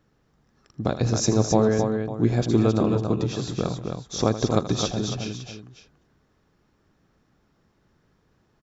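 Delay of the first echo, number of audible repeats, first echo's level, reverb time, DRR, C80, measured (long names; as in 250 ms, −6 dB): 81 ms, 4, −13.0 dB, no reverb audible, no reverb audible, no reverb audible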